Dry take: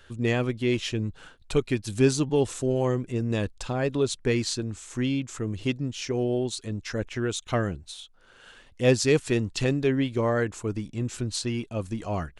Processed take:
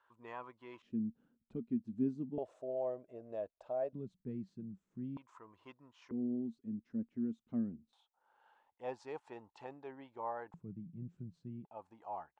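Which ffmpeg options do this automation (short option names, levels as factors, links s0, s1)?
-af "asetnsamples=n=441:p=0,asendcmd='0.82 bandpass f 230;2.38 bandpass f 630;3.93 bandpass f 190;5.17 bandpass f 1000;6.11 bandpass f 230;7.93 bandpass f 860;10.54 bandpass f 170;11.65 bandpass f 850',bandpass=f=1000:t=q:w=9.4:csg=0"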